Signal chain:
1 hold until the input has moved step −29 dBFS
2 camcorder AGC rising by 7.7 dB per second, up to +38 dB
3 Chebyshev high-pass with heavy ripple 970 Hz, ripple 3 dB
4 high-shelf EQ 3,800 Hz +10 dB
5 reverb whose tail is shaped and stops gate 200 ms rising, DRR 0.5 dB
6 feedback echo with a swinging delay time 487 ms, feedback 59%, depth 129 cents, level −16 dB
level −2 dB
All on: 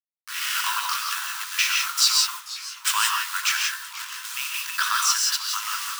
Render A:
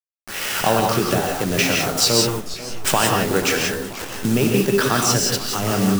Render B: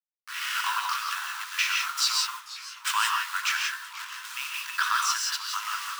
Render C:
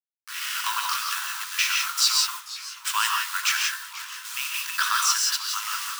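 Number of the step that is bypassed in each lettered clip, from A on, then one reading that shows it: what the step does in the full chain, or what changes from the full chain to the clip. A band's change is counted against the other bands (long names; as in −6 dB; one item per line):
3, change in integrated loudness +4.0 LU
4, 8 kHz band −5.5 dB
2, change in integrated loudness −1.0 LU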